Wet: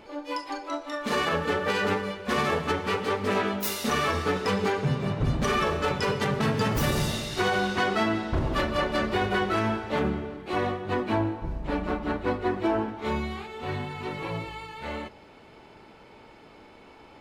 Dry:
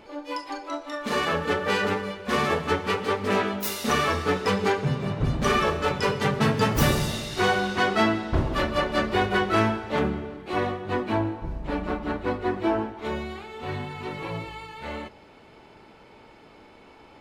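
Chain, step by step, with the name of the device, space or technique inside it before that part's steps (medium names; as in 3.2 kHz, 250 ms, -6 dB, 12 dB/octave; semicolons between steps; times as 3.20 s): limiter into clipper (peak limiter -15.5 dBFS, peak gain reduction 7 dB; hard clipper -16.5 dBFS, distortion -36 dB); 12.85–13.47 s: doubling 28 ms -4 dB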